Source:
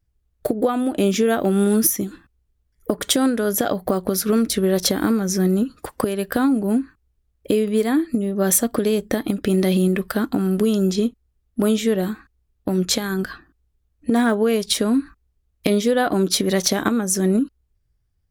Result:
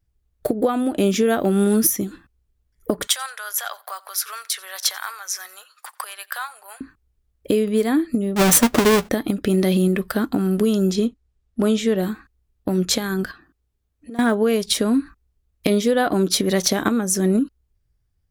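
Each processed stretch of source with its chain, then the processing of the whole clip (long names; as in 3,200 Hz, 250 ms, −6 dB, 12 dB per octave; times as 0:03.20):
0:03.07–0:06.81: inverse Chebyshev high-pass filter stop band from 280 Hz, stop band 60 dB + repeating echo 89 ms, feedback 27%, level −24 dB
0:08.36–0:09.09: each half-wave held at its own peak + double-tracking delay 12 ms −12 dB
0:11.05–0:11.96: low-pass filter 8,700 Hz + notch filter 280 Hz, Q 9
0:13.31–0:14.19: downward compressor 2 to 1, threshold −45 dBFS + low-shelf EQ 61 Hz −10 dB
whole clip: no processing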